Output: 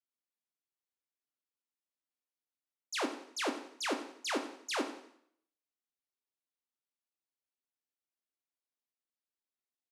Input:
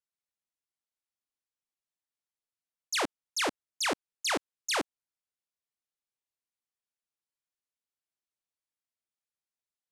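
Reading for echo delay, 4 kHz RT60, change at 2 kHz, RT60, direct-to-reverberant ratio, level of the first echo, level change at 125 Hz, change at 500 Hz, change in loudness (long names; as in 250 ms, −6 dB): 87 ms, 0.65 s, −5.5 dB, 0.65 s, 5.5 dB, −15.5 dB, below −10 dB, −2.5 dB, −5.0 dB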